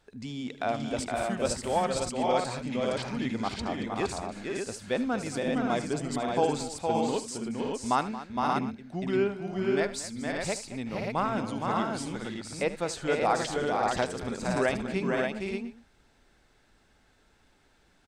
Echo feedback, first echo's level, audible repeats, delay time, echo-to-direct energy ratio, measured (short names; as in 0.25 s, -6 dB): no steady repeat, -15.5 dB, 6, 76 ms, 0.5 dB